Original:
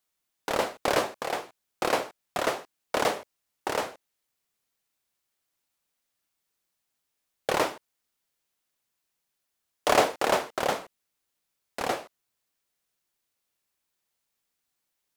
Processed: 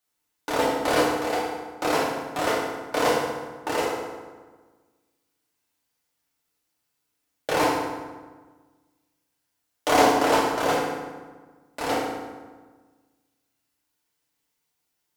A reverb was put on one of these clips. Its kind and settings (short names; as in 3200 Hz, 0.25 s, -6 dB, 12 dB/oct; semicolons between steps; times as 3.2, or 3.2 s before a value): FDN reverb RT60 1.4 s, low-frequency decay 1.25×, high-frequency decay 0.65×, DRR -5.5 dB; gain -2.5 dB